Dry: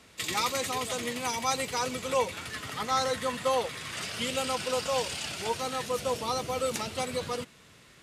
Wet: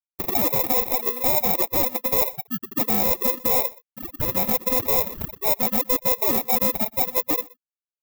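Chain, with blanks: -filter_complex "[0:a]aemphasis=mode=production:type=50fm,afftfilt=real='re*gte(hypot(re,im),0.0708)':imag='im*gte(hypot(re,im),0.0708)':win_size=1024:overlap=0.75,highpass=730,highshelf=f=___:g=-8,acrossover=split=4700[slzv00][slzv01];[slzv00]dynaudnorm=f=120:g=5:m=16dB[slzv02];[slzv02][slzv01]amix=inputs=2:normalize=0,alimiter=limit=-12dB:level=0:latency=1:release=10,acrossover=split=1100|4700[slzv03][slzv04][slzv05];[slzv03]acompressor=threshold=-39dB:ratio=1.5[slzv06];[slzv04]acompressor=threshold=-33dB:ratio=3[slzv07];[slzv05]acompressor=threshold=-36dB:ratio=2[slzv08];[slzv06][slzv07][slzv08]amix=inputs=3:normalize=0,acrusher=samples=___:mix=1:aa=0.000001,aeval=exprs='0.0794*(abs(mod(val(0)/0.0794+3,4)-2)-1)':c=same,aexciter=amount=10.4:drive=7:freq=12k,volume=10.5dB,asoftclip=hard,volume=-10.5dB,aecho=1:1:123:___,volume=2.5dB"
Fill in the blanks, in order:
2.5k, 29, 0.0708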